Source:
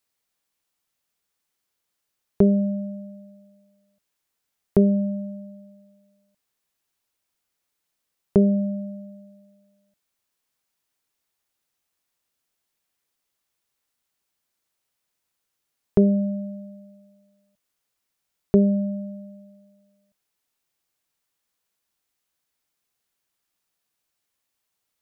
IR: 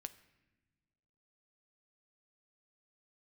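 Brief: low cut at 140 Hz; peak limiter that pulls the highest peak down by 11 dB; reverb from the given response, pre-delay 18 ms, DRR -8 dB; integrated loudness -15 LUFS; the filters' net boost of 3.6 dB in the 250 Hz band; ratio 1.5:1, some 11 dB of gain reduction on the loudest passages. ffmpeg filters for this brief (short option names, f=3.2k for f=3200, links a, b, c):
-filter_complex "[0:a]highpass=140,equalizer=f=250:t=o:g=6.5,acompressor=threshold=-40dB:ratio=1.5,alimiter=limit=-23dB:level=0:latency=1,asplit=2[a][b];[1:a]atrim=start_sample=2205,adelay=18[c];[b][c]afir=irnorm=-1:irlink=0,volume=12.5dB[d];[a][d]amix=inputs=2:normalize=0,volume=15dB"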